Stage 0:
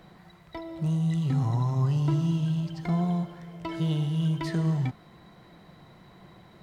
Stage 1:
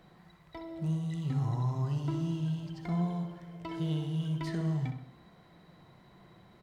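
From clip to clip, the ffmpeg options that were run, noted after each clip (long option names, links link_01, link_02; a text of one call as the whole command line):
ffmpeg -i in.wav -filter_complex "[0:a]asplit=2[link_01][link_02];[link_02]adelay=64,lowpass=frequency=3200:poles=1,volume=-7dB,asplit=2[link_03][link_04];[link_04]adelay=64,lowpass=frequency=3200:poles=1,volume=0.49,asplit=2[link_05][link_06];[link_06]adelay=64,lowpass=frequency=3200:poles=1,volume=0.49,asplit=2[link_07][link_08];[link_08]adelay=64,lowpass=frequency=3200:poles=1,volume=0.49,asplit=2[link_09][link_10];[link_10]adelay=64,lowpass=frequency=3200:poles=1,volume=0.49,asplit=2[link_11][link_12];[link_12]adelay=64,lowpass=frequency=3200:poles=1,volume=0.49[link_13];[link_01][link_03][link_05][link_07][link_09][link_11][link_13]amix=inputs=7:normalize=0,volume=-6.5dB" out.wav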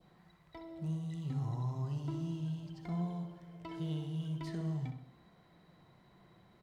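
ffmpeg -i in.wav -af "adynamicequalizer=threshold=0.00112:dfrequency=1700:dqfactor=1.3:tfrequency=1700:tqfactor=1.3:attack=5:release=100:ratio=0.375:range=2:mode=cutabove:tftype=bell,volume=-5.5dB" out.wav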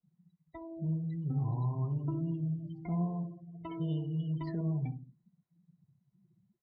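ffmpeg -i in.wav -af "afftdn=noise_reduction=35:noise_floor=-47,volume=4dB" out.wav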